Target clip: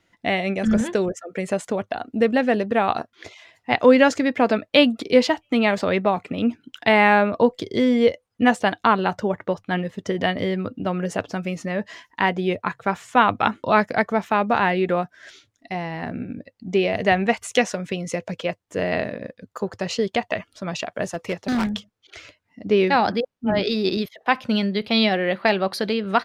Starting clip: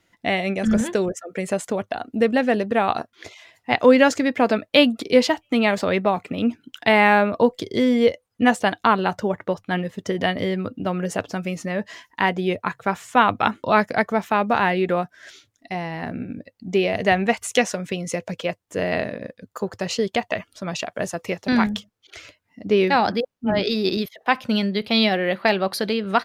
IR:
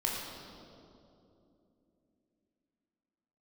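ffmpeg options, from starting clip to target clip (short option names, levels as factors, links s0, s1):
-filter_complex "[0:a]highshelf=f=10000:g=-11,asettb=1/sr,asplit=3[s0][s1][s2];[s0]atrim=end=21.124[s3];[s1]atrim=start=21.12:end=21.67,asetpts=PTS-STARTPTS,afade=t=in:d=0.004:c=qsin,afade=t=out:st=0.546:d=0.004:c=qsin,volume=8.91,asoftclip=hard,volume=0.112[s4];[s2]atrim=start=21.666[s5];[s3][s4]acrossfade=d=0.004:c1=hsin:c2=qsin[s6];[s6][s5]acrossfade=d=0.004:c1=qsin:c2=hsin"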